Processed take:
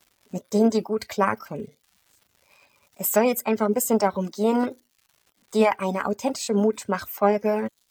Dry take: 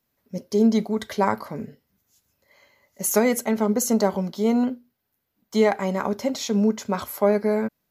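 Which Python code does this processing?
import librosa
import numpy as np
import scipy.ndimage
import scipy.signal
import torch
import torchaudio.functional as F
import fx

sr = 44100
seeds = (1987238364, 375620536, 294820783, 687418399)

y = fx.dmg_crackle(x, sr, seeds[0], per_s=270.0, level_db=-45.0)
y = fx.formant_shift(y, sr, semitones=3)
y = fx.dereverb_blind(y, sr, rt60_s=0.51)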